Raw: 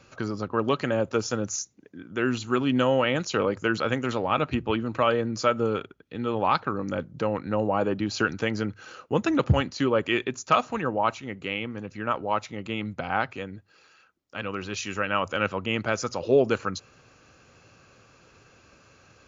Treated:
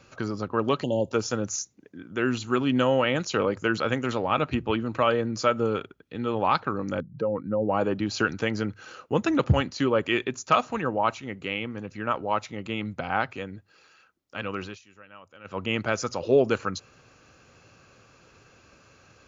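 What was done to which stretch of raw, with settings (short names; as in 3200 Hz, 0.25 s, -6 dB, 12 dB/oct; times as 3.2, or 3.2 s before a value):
0.83–1.12 spectral delete 1000–2700 Hz
7–7.69 spectral contrast raised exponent 1.8
14.63–15.6 dip -22.5 dB, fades 0.16 s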